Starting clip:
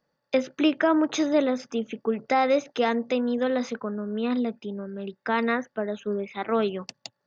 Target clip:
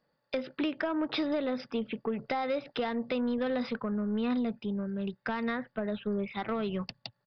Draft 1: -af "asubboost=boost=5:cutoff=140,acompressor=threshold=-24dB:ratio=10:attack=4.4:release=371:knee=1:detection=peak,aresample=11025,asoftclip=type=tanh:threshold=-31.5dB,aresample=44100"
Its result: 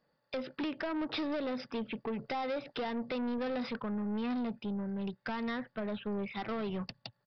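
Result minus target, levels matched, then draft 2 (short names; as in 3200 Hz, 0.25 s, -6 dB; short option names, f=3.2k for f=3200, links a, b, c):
soft clip: distortion +10 dB
-af "asubboost=boost=5:cutoff=140,acompressor=threshold=-24dB:ratio=10:attack=4.4:release=371:knee=1:detection=peak,aresample=11025,asoftclip=type=tanh:threshold=-22dB,aresample=44100"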